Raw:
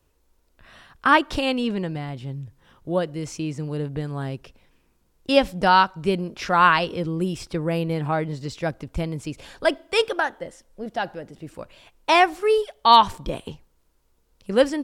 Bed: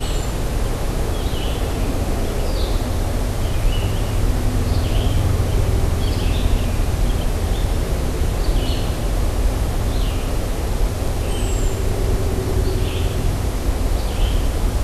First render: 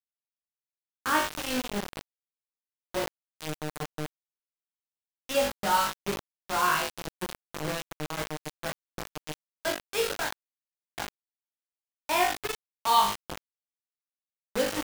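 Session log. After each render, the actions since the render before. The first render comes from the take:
tuned comb filter 51 Hz, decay 0.53 s, harmonics all, mix 100%
bit reduction 5 bits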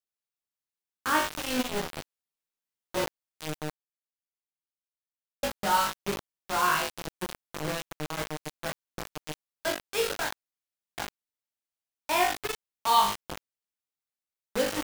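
0:01.58–0:03.05: double-tracking delay 12 ms −2 dB
0:03.72–0:05.43: silence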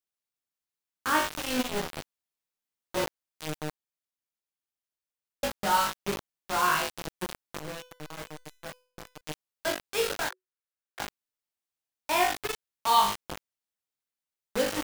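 0:07.59–0:09.21: tuned comb filter 500 Hz, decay 0.46 s
0:10.29–0:11.00: Chebyshev high-pass with heavy ripple 360 Hz, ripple 9 dB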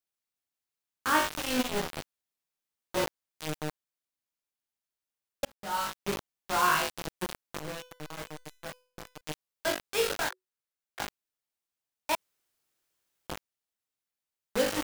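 0:05.45–0:06.18: fade in
0:12.15–0:13.27: fill with room tone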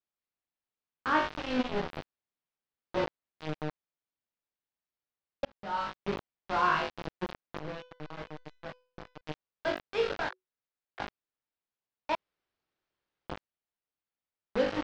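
low-pass filter 5,000 Hz 24 dB per octave
high-shelf EQ 3,000 Hz −10.5 dB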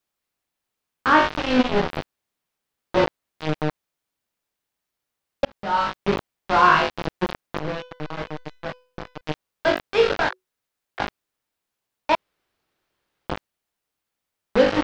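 level +11.5 dB
brickwall limiter −3 dBFS, peak gain reduction 1.5 dB

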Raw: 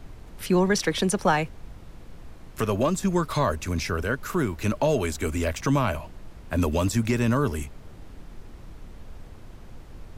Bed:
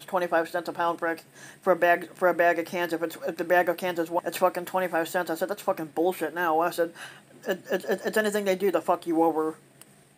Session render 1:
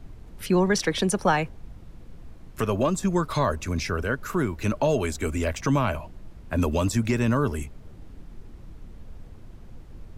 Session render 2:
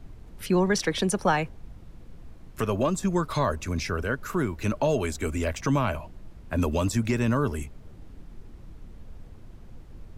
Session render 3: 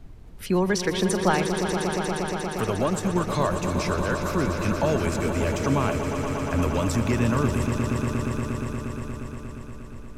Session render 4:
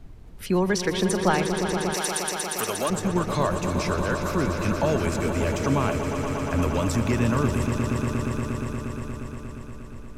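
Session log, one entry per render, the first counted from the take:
broadband denoise 6 dB, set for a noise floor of −45 dBFS
level −1.5 dB
echo that builds up and dies away 118 ms, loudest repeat 5, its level −10 dB
0:01.94–0:02.90: RIAA equalisation recording

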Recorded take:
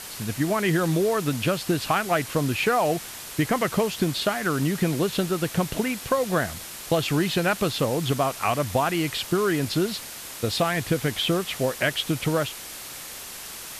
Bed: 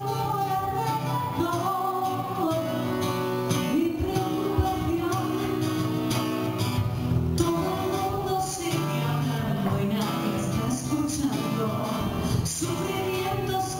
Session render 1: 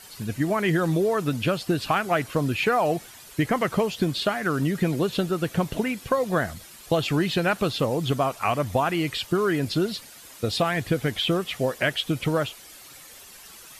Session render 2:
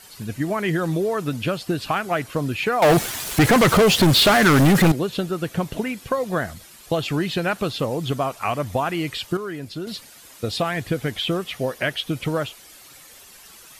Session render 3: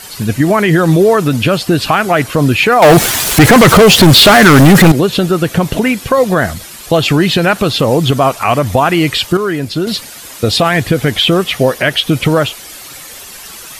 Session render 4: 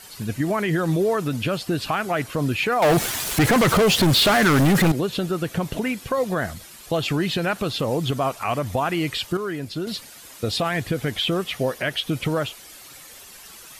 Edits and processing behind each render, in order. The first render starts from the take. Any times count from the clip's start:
broadband denoise 11 dB, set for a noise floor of −38 dBFS
0:02.82–0:04.92: leveller curve on the samples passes 5; 0:09.37–0:09.87: clip gain −7.5 dB; 0:11.51–0:12.12: notch filter 7,500 Hz, Q 8.3
boost into a limiter +15 dB
level −12.5 dB

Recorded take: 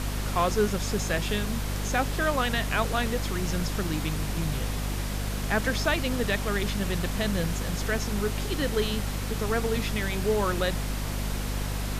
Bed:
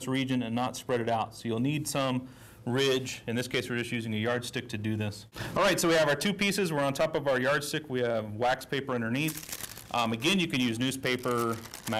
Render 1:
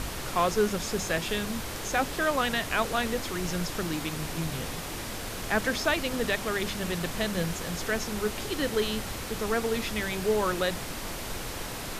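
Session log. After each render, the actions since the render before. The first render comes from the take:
mains-hum notches 50/100/150/200/250 Hz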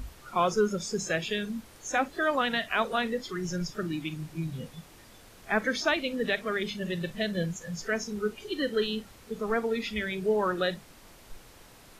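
noise reduction from a noise print 17 dB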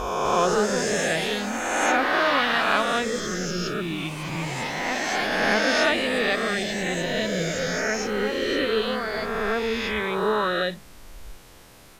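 peak hold with a rise ahead of every peak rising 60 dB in 2.18 s
delay with pitch and tempo change per echo 252 ms, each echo +3 semitones, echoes 3, each echo −6 dB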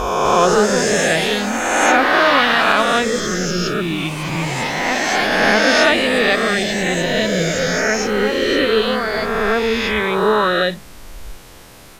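level +8 dB
brickwall limiter −2 dBFS, peak gain reduction 3 dB

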